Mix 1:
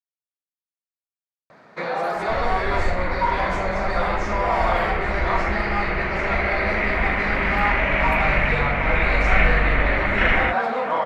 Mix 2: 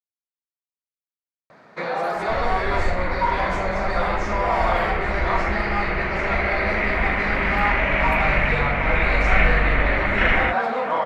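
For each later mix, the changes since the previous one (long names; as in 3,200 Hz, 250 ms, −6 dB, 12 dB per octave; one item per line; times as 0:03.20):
nothing changed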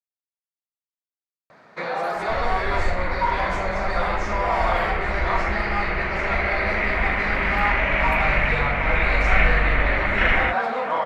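master: add parametric band 240 Hz −3 dB 2.7 octaves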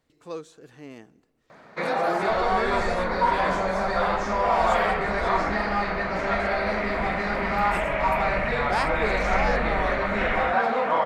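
speech: unmuted
second sound −9.5 dB
master: add parametric band 240 Hz +3 dB 2.7 octaves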